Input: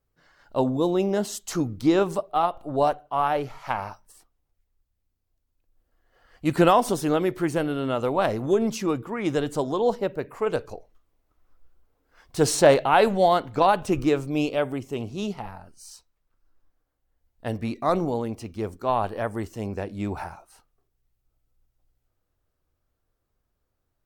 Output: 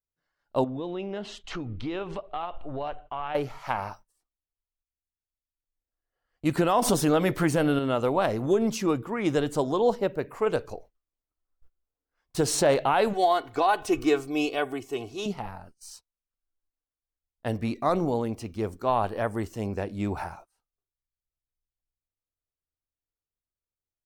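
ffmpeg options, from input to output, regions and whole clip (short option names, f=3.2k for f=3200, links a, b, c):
-filter_complex "[0:a]asettb=1/sr,asplit=3[a][b][c];[a]atrim=end=0.644[d];[b]atrim=start=0.64:end=3.35,asetpts=PTS-STARTPTS,afade=t=in:d=0.004:c=qsin,afade=t=out:st=2.706:d=0.004:c=qsin,asubboost=boost=8.5:cutoff=76,acompressor=threshold=-31dB:ratio=4:attack=3.2:release=140:knee=1:detection=peak,lowpass=f=2.9k:t=q:w=2.2[e];[c]atrim=start=3.346[f];[d][e]acrossfade=d=0.004:c1=hsin:c2=qsin[g];[g][f]acrossfade=d=0.004:c1=qsin:c2=hsin,asettb=1/sr,asplit=3[h][i][j];[h]atrim=end=6.824[k];[i]atrim=start=6.82:end=7.79,asetpts=PTS-STARTPTS,afade=t=in:d=0.004:c=qsin,afade=t=out:st=0.966:d=0.004:c=qsin,bandreject=f=360:w=5.2,acontrast=83[l];[j]atrim=start=7.786[m];[k][l]acrossfade=d=0.004:c1=hsin:c2=qsin[n];[n][m]acrossfade=d=0.004:c1=qsin:c2=hsin,asettb=1/sr,asplit=3[o][p][q];[o]atrim=end=13.134[r];[p]atrim=start=13.13:end=15.26,asetpts=PTS-STARTPTS,afade=t=in:d=0.004:c=qsin,afade=t=out:st=2.126:d=0.004:c=qsin,lowshelf=f=290:g=-11,aecho=1:1:2.7:0.69,atrim=end_sample=93933[s];[q]atrim=start=15.256[t];[r][s]acrossfade=d=0.004:c1=hsin:c2=qsin[u];[u][t]acrossfade=d=0.004:c1=qsin:c2=hsin,agate=range=-22dB:threshold=-47dB:ratio=16:detection=peak,alimiter=limit=-12.5dB:level=0:latency=1:release=166"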